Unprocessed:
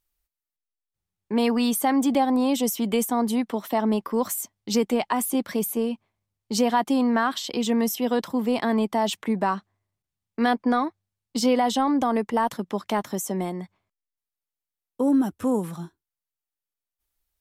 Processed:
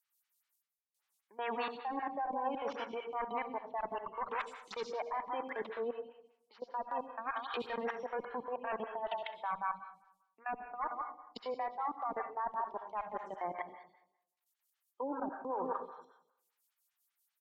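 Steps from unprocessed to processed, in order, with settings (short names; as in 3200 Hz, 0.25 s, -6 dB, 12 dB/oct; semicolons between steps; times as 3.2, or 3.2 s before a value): tracing distortion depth 0.068 ms; outdoor echo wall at 29 m, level -10 dB; treble ducked by the level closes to 1500 Hz, closed at -22.5 dBFS; HPF 1100 Hz 12 dB/oct; reverse; compressor 12:1, threshold -42 dBFS, peak gain reduction 20 dB; reverse; added harmonics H 2 -6 dB, 5 -25 dB, 6 -38 dB, 8 -28 dB, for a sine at -30 dBFS; spectral gate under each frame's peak -20 dB strong; level quantiser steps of 23 dB; transient shaper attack -2 dB, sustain -7 dB; on a send at -8 dB: high shelf 2700 Hz +10 dB + reverb RT60 0.80 s, pre-delay 58 ms; on the sum: photocell phaser 5.1 Hz; gain +11.5 dB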